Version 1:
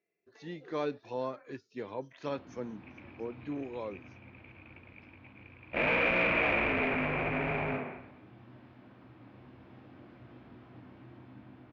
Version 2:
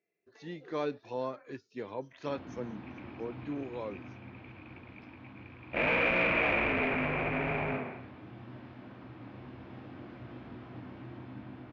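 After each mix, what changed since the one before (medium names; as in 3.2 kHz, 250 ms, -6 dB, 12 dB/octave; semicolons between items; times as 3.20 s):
first sound +6.5 dB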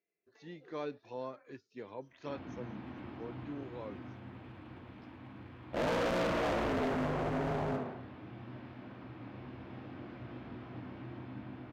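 speech -6.0 dB; second sound: remove resonant low-pass 2.4 kHz, resonance Q 12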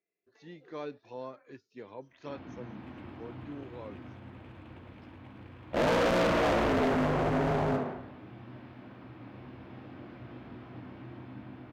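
second sound +6.0 dB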